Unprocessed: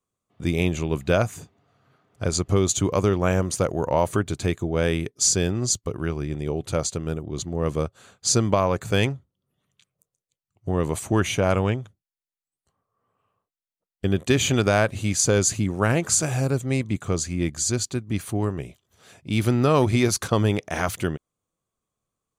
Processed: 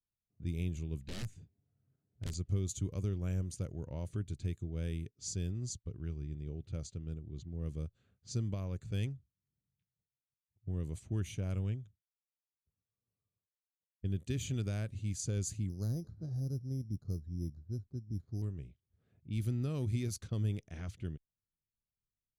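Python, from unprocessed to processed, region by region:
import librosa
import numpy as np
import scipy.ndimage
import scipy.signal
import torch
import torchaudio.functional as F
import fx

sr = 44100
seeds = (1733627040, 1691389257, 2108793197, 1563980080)

y = fx.chain(x, sr, fx.notch(hz=1200.0, q=9.5),
    fx.overflow_wrap(gain_db=16.5), at=(1.03, 2.35))
y = fx.chain(y, sr, fx.bessel_lowpass(hz=800.0, order=4),
    fx.resample_bad(factor=8, down='filtered', up='hold'), at=(15.69, 18.42))
y = fx.tone_stack(y, sr, knobs='10-0-1')
y = fx.env_lowpass(y, sr, base_hz=1200.0, full_db=-33.5)
y = fx.high_shelf(y, sr, hz=12000.0, db=7.0)
y = y * 10.0 ** (1.0 / 20.0)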